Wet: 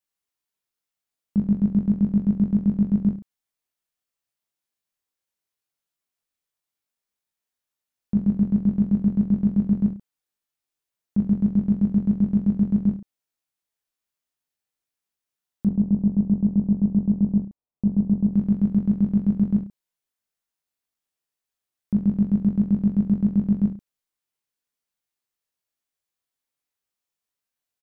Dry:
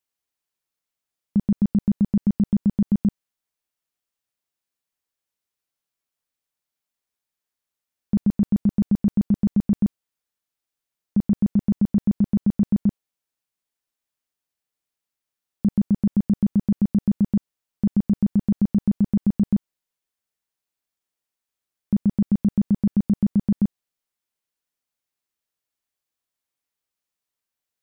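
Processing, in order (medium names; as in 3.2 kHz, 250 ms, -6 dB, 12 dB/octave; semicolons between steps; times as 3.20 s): 15.67–18.27 s: low-pass 1 kHz 24 dB/octave; reverse bouncing-ball echo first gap 20 ms, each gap 1.15×, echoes 5; trim -3.5 dB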